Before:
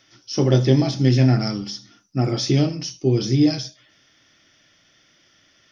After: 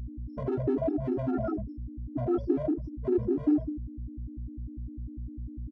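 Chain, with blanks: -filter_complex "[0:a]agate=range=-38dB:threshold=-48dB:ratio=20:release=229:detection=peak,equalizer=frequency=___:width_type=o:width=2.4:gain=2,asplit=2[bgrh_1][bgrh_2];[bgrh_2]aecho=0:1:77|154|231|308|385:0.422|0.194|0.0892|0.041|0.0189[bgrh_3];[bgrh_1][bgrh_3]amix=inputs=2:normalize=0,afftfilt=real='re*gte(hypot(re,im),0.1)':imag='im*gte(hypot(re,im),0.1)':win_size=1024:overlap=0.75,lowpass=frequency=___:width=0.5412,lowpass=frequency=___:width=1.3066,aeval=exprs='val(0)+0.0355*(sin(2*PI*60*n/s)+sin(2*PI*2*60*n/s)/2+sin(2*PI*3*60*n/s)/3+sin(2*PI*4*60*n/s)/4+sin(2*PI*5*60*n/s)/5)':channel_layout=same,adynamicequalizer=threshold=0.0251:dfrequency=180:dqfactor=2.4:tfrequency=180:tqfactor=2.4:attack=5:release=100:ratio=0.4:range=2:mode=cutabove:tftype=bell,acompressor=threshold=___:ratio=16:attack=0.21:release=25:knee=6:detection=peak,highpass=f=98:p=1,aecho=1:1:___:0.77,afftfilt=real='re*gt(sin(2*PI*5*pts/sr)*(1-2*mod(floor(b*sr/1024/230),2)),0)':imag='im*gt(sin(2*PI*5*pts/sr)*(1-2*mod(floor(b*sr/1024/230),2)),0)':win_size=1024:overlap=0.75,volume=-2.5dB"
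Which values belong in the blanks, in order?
510, 1.7k, 1.7k, -18dB, 3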